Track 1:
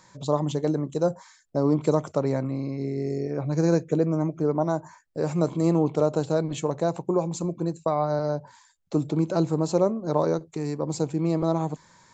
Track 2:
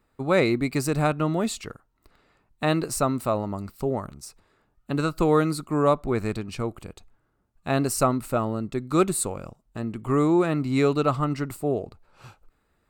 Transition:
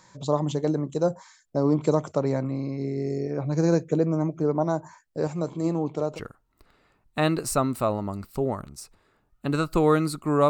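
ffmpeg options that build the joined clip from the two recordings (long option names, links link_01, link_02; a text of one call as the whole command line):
ffmpeg -i cue0.wav -i cue1.wav -filter_complex "[0:a]asettb=1/sr,asplit=3[link_01][link_02][link_03];[link_01]atrim=end=5.274[link_04];[link_02]atrim=start=5.27:end=6.2,asetpts=PTS-STARTPTS,afade=type=in:duration=0.004:curve=qsin,afade=type=out:start_time=0.926:duration=0.004:curve=qsin,flanger=delay=1:depth=2.9:regen=80:speed=0.93:shape=triangular[link_05];[link_03]atrim=start=6.196[link_06];[link_04][link_05]acrossfade=duration=0.004:curve1=hsin:curve2=qsin[link_07];[link_07][link_06]acrossfade=duration=0.004:curve1=qsin:curve2=hsin,apad=whole_dur=10.49,atrim=end=10.49,atrim=end=6.2,asetpts=PTS-STARTPTS[link_08];[1:a]atrim=start=1.57:end=5.94,asetpts=PTS-STARTPTS[link_09];[link_08][link_09]acrossfade=duration=0.08:curve1=tri:curve2=tri" out.wav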